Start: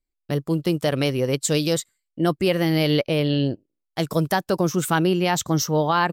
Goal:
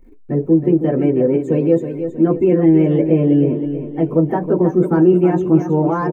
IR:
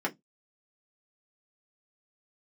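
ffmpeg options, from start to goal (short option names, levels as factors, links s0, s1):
-filter_complex "[0:a]aeval=exprs='val(0)+0.5*0.0299*sgn(val(0))':c=same,equalizer=f=4400:t=o:w=0.73:g=-8.5[s0];[1:a]atrim=start_sample=2205,asetrate=52920,aresample=44100[s1];[s0][s1]afir=irnorm=-1:irlink=0,acrossover=split=1700[s2][s3];[s3]aeval=exprs='0.0668*(abs(mod(val(0)/0.0668+3,4)-2)-1)':c=same[s4];[s2][s4]amix=inputs=2:normalize=0,afftdn=nr=14:nf=-28,tiltshelf=f=810:g=9,bandreject=f=7600:w=9.8,asplit=2[s5][s6];[s6]aecho=0:1:319|638|957|1276|1595:0.355|0.153|0.0656|0.0282|0.0121[s7];[s5][s7]amix=inputs=2:normalize=0,volume=0.422"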